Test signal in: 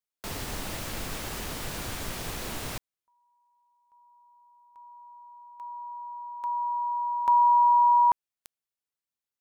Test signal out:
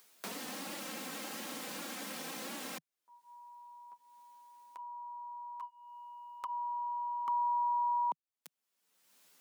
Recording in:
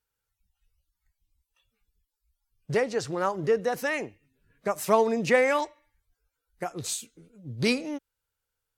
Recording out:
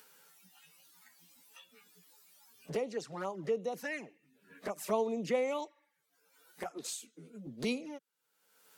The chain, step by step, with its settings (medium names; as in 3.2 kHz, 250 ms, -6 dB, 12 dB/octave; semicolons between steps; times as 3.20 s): steep high-pass 160 Hz 48 dB/octave; touch-sensitive flanger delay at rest 11.7 ms, full sweep at -23 dBFS; upward compressor, threshold -27 dBFS; trim -8 dB